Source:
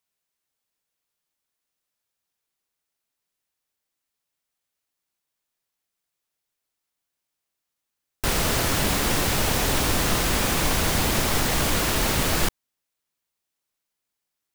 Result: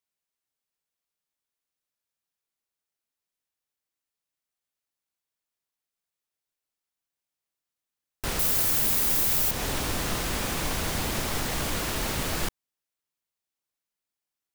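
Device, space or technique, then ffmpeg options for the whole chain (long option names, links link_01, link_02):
clipper into limiter: -filter_complex "[0:a]asettb=1/sr,asplit=3[link_01][link_02][link_03];[link_01]atrim=end=8.394[link_04];[link_02]atrim=start=8.39:end=9.51,asetpts=PTS-STARTPTS,afade=type=in:duration=0.004:curve=qsin,afade=type=out:start_time=1.116:duration=0.004:curve=qsin,aemphasis=mode=production:type=50fm[link_05];[link_03]atrim=start=9.506[link_06];[link_04][link_05]acrossfade=duration=0.004:curve1=hsin:curve2=qsin[link_07];[link_07][link_06]acrossfade=duration=0.004:curve1=qsin:curve2=hsin,asoftclip=type=hard:threshold=-4dB,alimiter=limit=-8dB:level=0:latency=1:release=129,volume=-6.5dB"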